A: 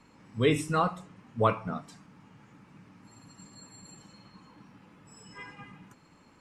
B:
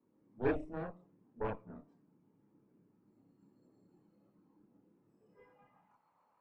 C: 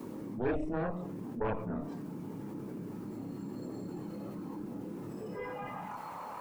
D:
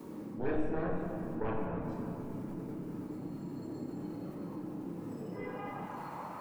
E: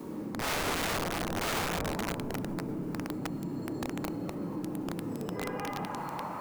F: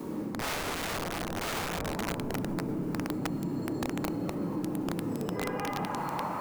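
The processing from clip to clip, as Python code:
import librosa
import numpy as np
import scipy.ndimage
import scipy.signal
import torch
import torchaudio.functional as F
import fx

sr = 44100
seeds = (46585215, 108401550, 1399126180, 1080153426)

y1 = fx.filter_sweep_bandpass(x, sr, from_hz=350.0, to_hz=830.0, start_s=5.19, end_s=5.86, q=3.5)
y1 = fx.cheby_harmonics(y1, sr, harmonics=(3, 6, 7), levels_db=(-20, -16, -43), full_scale_db=-18.5)
y1 = fx.chorus_voices(y1, sr, voices=6, hz=0.49, base_ms=29, depth_ms=1.1, mix_pct=50)
y1 = y1 * librosa.db_to_amplitude(2.0)
y2 = fx.env_flatten(y1, sr, amount_pct=70)
y2 = y2 * librosa.db_to_amplitude(-1.0)
y3 = fx.room_shoebox(y2, sr, seeds[0], volume_m3=200.0, walls='hard', distance_m=0.49)
y3 = y3 * librosa.db_to_amplitude(-4.0)
y4 = (np.mod(10.0 ** (32.0 / 20.0) * y3 + 1.0, 2.0) - 1.0) / 10.0 ** (32.0 / 20.0)
y4 = y4 * librosa.db_to_amplitude(5.5)
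y5 = fx.rider(y4, sr, range_db=10, speed_s=0.5)
y5 = y5 * librosa.db_to_amplitude(1.0)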